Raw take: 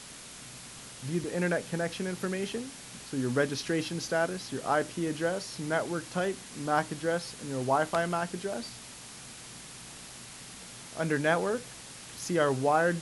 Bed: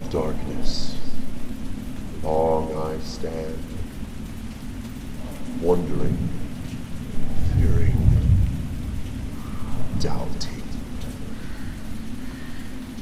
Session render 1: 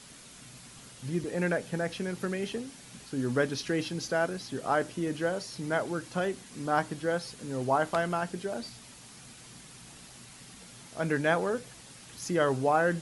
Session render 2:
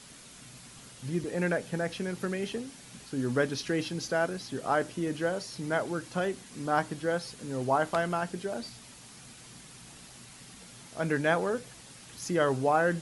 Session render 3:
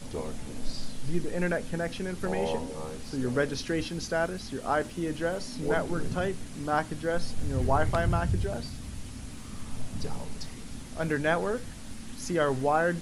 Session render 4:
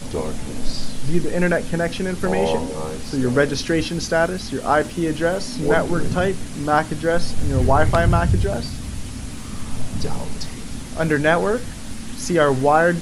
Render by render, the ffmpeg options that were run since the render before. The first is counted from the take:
-af "afftdn=nr=6:nf=-47"
-af anull
-filter_complex "[1:a]volume=-11dB[a];[0:a][a]amix=inputs=2:normalize=0"
-af "volume=10dB,alimiter=limit=-3dB:level=0:latency=1"

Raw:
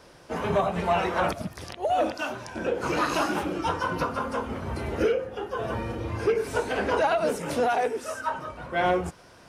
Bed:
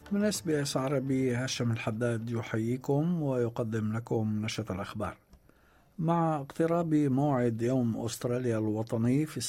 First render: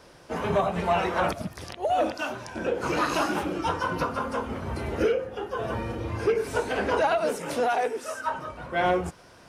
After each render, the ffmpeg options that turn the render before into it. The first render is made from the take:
-filter_complex "[0:a]asettb=1/sr,asplit=3[a][b][c];[a]atrim=end=7.184[d];[b]atrim=start=7.18:end=8.25,asetpts=PTS-STARTPTS,afade=t=in:d=0.004:c=qsin,afade=t=out:st=1.066:d=0.004:c=qsin,lowshelf=f=150:g=-10.5[e];[c]atrim=start=8.246[f];[d][e]acrossfade=d=0.004:c1=hsin:c2=qsin[g];[g][f]acrossfade=d=0.004:c1=qsin:c2=hsin"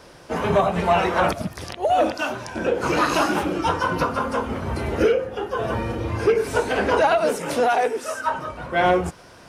-af "volume=5.5dB"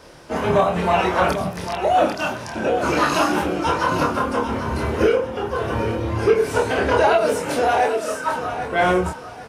-filter_complex "[0:a]asplit=2[a][b];[b]adelay=27,volume=-4dB[c];[a][c]amix=inputs=2:normalize=0,aecho=1:1:795|1590|2385:0.316|0.0885|0.0248"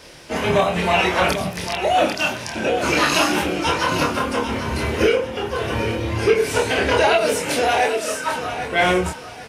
-af "highshelf=f=1.7k:t=q:w=1.5:g=6"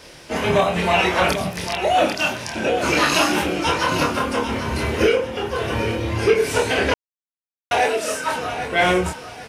-filter_complex "[0:a]asplit=3[a][b][c];[a]atrim=end=6.94,asetpts=PTS-STARTPTS,afade=t=out:st=6.936:d=0.004:c=hsin[d];[b]atrim=start=6.94:end=7.71,asetpts=PTS-STARTPTS,volume=0[e];[c]atrim=start=7.71,asetpts=PTS-STARTPTS,afade=t=in:d=0.004:c=hsin[f];[d][e][f]concat=n=3:v=0:a=1"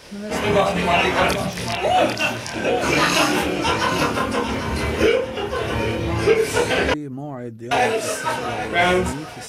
-filter_complex "[1:a]volume=-3.5dB[a];[0:a][a]amix=inputs=2:normalize=0"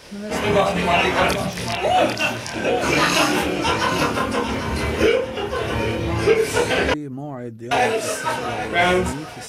-af anull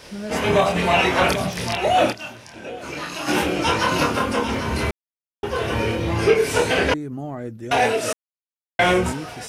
-filter_complex "[0:a]asplit=7[a][b][c][d][e][f][g];[a]atrim=end=2.28,asetpts=PTS-STARTPTS,afade=t=out:st=2.11:d=0.17:c=exp:silence=0.223872[h];[b]atrim=start=2.28:end=3.12,asetpts=PTS-STARTPTS,volume=-13dB[i];[c]atrim=start=3.12:end=4.91,asetpts=PTS-STARTPTS,afade=t=in:d=0.17:c=exp:silence=0.223872,afade=t=out:st=1.786:d=0.004:c=hsin[j];[d]atrim=start=4.91:end=5.43,asetpts=PTS-STARTPTS,volume=0[k];[e]atrim=start=5.43:end=8.13,asetpts=PTS-STARTPTS,afade=t=in:d=0.004:c=hsin,afade=t=out:st=2.696:d=0.004:c=hsin[l];[f]atrim=start=8.13:end=8.79,asetpts=PTS-STARTPTS,volume=0[m];[g]atrim=start=8.79,asetpts=PTS-STARTPTS,afade=t=in:d=0.004:c=hsin[n];[h][i][j][k][l][m][n]concat=n=7:v=0:a=1"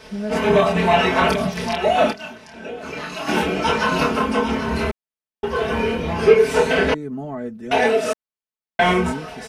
-af "highshelf=f=4.4k:g=-9.5,aecho=1:1:4.6:0.78"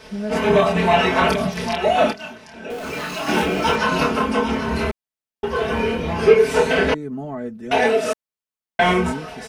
-filter_complex "[0:a]asettb=1/sr,asplit=3[a][b][c];[a]atrim=end=2.704[d];[b]atrim=start=2.7:end=3.76,asetpts=PTS-STARTPTS,afade=t=in:d=0.004:c=qsin,afade=t=out:st=1.056:d=0.004:c=qsin,aeval=exprs='val(0)+0.5*0.0251*sgn(val(0))':c=same[e];[c]atrim=start=3.756[f];[d][e]acrossfade=d=0.004:c1=hsin:c2=qsin[g];[g][f]acrossfade=d=0.004:c1=qsin:c2=hsin"

